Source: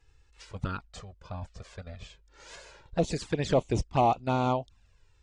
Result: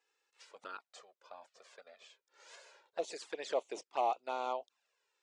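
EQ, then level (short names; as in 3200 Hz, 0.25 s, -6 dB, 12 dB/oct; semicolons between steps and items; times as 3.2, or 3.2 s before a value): HPF 420 Hz 24 dB/oct; -8.0 dB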